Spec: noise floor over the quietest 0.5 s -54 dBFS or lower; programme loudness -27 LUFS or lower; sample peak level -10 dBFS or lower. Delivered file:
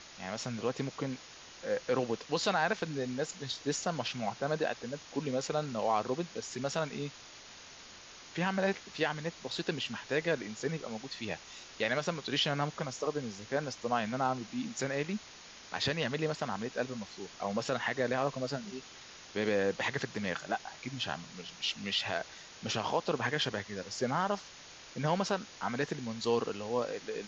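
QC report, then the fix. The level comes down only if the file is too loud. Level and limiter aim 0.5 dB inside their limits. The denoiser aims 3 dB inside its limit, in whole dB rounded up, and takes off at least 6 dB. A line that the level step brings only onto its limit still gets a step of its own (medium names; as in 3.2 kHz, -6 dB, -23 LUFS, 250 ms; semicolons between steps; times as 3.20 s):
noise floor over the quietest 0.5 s -52 dBFS: fail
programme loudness -34.5 LUFS: pass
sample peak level -16.0 dBFS: pass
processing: noise reduction 6 dB, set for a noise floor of -52 dBFS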